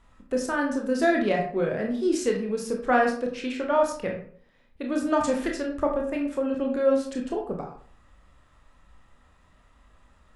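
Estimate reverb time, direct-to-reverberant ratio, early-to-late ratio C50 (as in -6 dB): 0.55 s, 0.5 dB, 6.5 dB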